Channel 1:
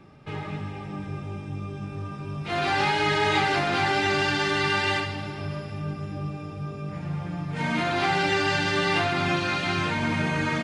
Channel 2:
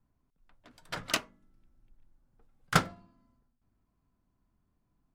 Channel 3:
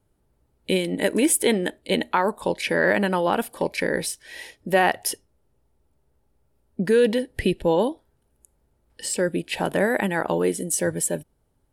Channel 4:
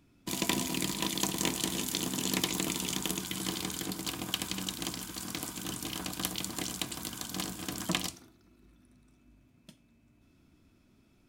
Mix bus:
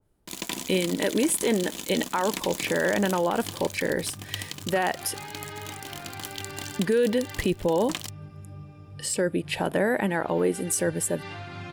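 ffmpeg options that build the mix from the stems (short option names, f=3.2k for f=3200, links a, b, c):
-filter_complex "[0:a]equalizer=f=95:t=o:w=0.77:g=10,alimiter=limit=-14dB:level=0:latency=1:release=480,adelay=2350,volume=-14.5dB[a];[1:a]adelay=2000,volume=-13.5dB[b];[2:a]adynamicequalizer=threshold=0.0141:dfrequency=1900:dqfactor=0.7:tfrequency=1900:tqfactor=0.7:attack=5:release=100:ratio=0.375:range=2.5:mode=cutabove:tftype=highshelf,volume=-1dB,asplit=2[c][d];[3:a]lowshelf=f=400:g=-4.5,aeval=exprs='sgn(val(0))*max(abs(val(0))-0.0112,0)':c=same,volume=2.5dB[e];[d]apad=whole_len=572424[f];[a][f]sidechaincompress=threshold=-31dB:ratio=8:attack=28:release=125[g];[g][b][c][e]amix=inputs=4:normalize=0,alimiter=limit=-14.5dB:level=0:latency=1:release=13"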